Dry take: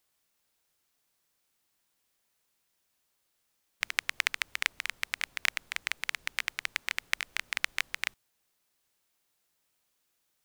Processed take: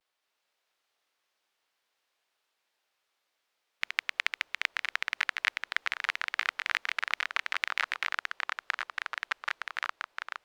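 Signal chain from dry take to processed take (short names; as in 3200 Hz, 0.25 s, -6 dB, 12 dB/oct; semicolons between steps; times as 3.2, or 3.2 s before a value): echoes that change speed 0.221 s, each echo -3 st, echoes 3; vibrato 0.31 Hz 30 cents; three-band isolator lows -19 dB, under 370 Hz, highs -15 dB, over 4900 Hz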